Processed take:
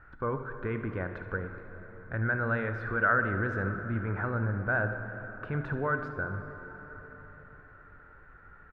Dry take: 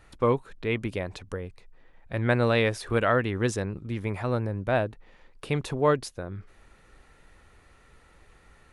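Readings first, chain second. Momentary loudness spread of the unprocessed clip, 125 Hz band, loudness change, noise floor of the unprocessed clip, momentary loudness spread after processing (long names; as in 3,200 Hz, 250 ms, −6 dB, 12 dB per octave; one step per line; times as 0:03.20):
14 LU, −3.0 dB, −4.0 dB, −58 dBFS, 19 LU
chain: low-shelf EQ 350 Hz +7 dB
brickwall limiter −16.5 dBFS, peak gain reduction 10.5 dB
low-pass with resonance 1,500 Hz, resonance Q 11
on a send: single-tap delay 73 ms −14 dB
on the sum: dense smooth reverb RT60 4.6 s, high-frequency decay 0.55×, DRR 7 dB
level −7 dB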